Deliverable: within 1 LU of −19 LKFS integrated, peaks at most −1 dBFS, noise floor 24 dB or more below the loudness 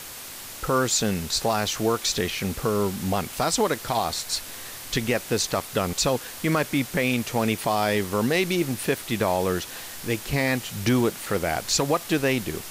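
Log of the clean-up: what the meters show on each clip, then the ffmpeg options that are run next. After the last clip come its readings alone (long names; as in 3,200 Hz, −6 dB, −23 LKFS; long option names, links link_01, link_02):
background noise floor −39 dBFS; target noise floor −49 dBFS; integrated loudness −25.0 LKFS; sample peak −11.0 dBFS; target loudness −19.0 LKFS
→ -af "afftdn=noise_reduction=10:noise_floor=-39"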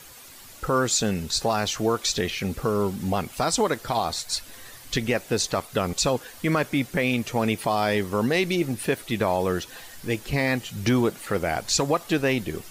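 background noise floor −46 dBFS; target noise floor −49 dBFS
→ -af "afftdn=noise_reduction=6:noise_floor=-46"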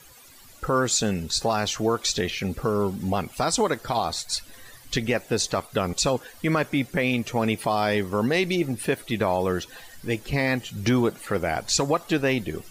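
background noise floor −49 dBFS; integrated loudness −25.0 LKFS; sample peak −11.5 dBFS; target loudness −19.0 LKFS
→ -af "volume=6dB"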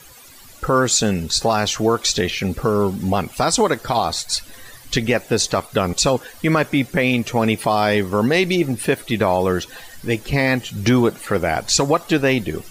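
integrated loudness −19.0 LKFS; sample peak −5.5 dBFS; background noise floor −43 dBFS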